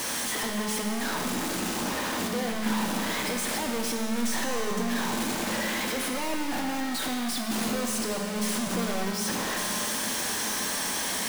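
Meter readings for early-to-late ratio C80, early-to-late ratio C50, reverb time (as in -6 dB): 3.5 dB, 2.5 dB, 2.7 s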